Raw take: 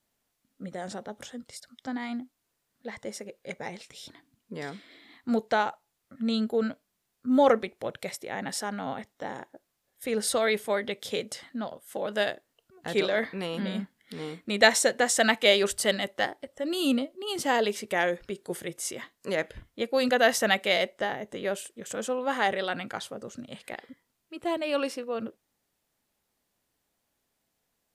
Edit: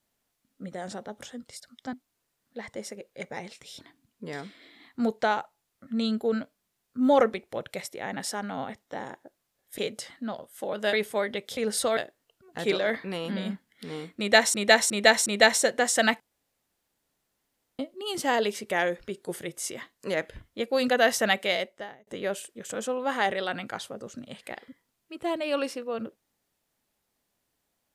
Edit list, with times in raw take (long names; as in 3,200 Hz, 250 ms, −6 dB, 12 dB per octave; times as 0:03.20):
0:01.93–0:02.22: remove
0:10.07–0:10.47: swap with 0:11.11–0:12.26
0:14.47–0:14.83: repeat, 4 plays
0:15.41–0:17.00: fill with room tone
0:20.59–0:21.28: fade out